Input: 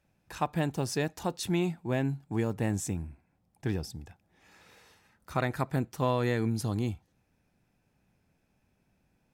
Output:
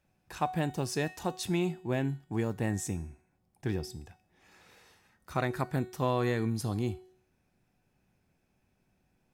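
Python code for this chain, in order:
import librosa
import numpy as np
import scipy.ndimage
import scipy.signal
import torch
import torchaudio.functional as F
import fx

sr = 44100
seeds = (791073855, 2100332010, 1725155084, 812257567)

y = fx.comb_fb(x, sr, f0_hz=370.0, decay_s=0.57, harmonics='all', damping=0.0, mix_pct=70)
y = F.gain(torch.from_numpy(y), 8.5).numpy()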